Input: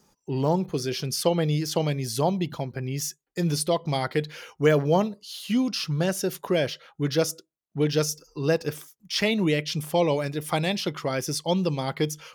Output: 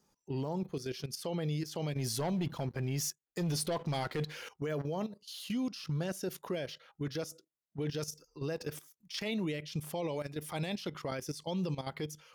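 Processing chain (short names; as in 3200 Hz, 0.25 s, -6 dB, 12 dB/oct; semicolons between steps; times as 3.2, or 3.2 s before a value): 1.96–4.49 sample leveller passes 2; level quantiser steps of 14 dB; limiter -24 dBFS, peak gain reduction 9 dB; gain -3.5 dB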